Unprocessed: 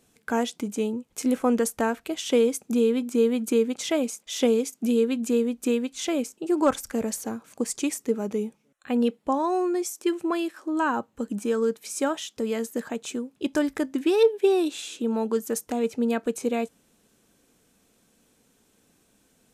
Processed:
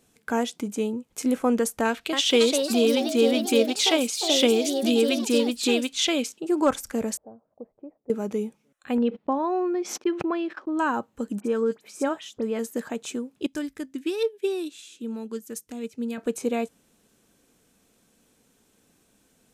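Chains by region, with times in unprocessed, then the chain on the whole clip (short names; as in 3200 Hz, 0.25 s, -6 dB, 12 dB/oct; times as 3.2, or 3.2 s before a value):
1.85–6.4 bell 3500 Hz +12 dB 1.6 oct + echoes that change speed 0.277 s, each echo +3 st, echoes 3, each echo -6 dB
7.17–8.1 ladder low-pass 710 Hz, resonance 60% + bell 310 Hz -7.5 dB 2.6 oct
8.98–10.79 gate -42 dBFS, range -38 dB + air absorption 260 m + backwards sustainer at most 86 dB/s
11.4–12.59 high shelf 3600 Hz -10.5 dB + dispersion highs, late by 47 ms, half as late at 2700 Hz
13.46–16.18 bell 760 Hz -11 dB 1.7 oct + upward expander, over -37 dBFS
whole clip: dry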